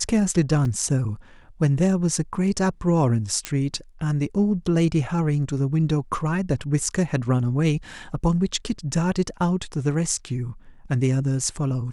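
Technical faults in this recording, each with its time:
0.65 gap 3.2 ms
3.45 pop -9 dBFS

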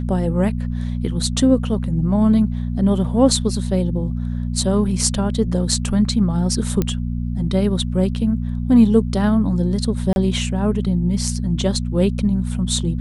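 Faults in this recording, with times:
hum 60 Hz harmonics 4 -23 dBFS
6.82 pop -7 dBFS
10.13–10.16 gap 31 ms

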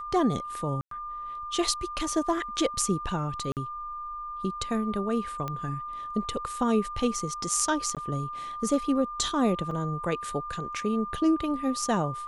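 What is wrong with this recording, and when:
tone 1200 Hz -34 dBFS
0.81–0.91 gap 0.103 s
3.52–3.57 gap 48 ms
5.48 pop -19 dBFS
7.95–7.97 gap 17 ms
9.71 gap 3.4 ms

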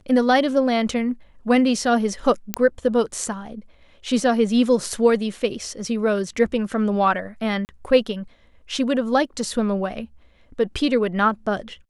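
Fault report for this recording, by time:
2.54 pop -4 dBFS
7.65–7.69 gap 39 ms

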